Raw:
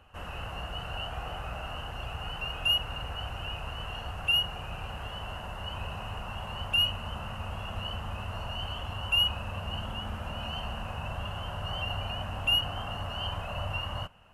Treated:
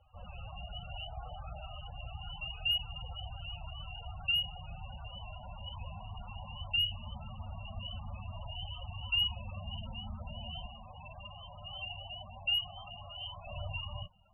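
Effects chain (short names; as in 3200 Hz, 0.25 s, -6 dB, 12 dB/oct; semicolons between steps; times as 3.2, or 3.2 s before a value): loudest bins only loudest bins 16; 10.66–13.47 low shelf 430 Hz -9 dB; gain -5 dB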